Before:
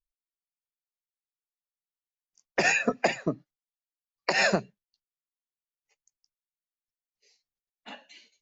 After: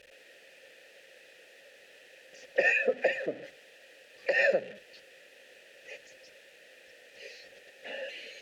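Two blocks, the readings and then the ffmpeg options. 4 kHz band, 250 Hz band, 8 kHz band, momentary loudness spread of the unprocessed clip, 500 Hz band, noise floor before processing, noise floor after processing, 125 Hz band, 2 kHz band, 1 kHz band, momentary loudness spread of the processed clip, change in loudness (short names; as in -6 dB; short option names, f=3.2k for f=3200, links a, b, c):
-8.0 dB, -12.0 dB, n/a, 12 LU, +1.5 dB, under -85 dBFS, -57 dBFS, under -15 dB, -1.0 dB, -11.0 dB, 22 LU, -2.5 dB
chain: -filter_complex "[0:a]aeval=exprs='val(0)+0.5*0.0316*sgn(val(0))':c=same,asplit=3[a][b][c];[a]bandpass=f=530:t=q:w=8,volume=0dB[d];[b]bandpass=f=1.84k:t=q:w=8,volume=-6dB[e];[c]bandpass=f=2.48k:t=q:w=8,volume=-9dB[f];[d][e][f]amix=inputs=3:normalize=0,volume=5.5dB"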